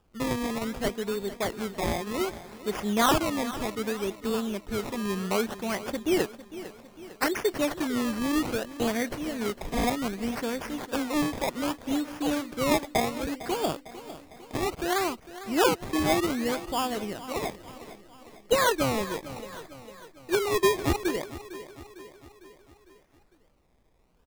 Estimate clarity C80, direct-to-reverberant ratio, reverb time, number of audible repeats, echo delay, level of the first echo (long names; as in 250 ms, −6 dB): no reverb audible, no reverb audible, no reverb audible, 4, 453 ms, −15.0 dB